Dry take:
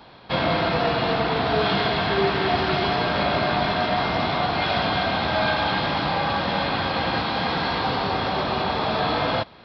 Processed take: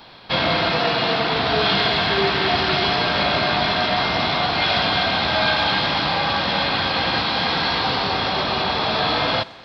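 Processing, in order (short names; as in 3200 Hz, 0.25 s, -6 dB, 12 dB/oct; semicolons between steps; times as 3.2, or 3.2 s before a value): 0.72–1.32 HPF 110 Hz; tape echo 0.128 s, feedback 80%, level -20 dB, low-pass 5200 Hz; added noise brown -67 dBFS; high shelf 2100 Hz +10 dB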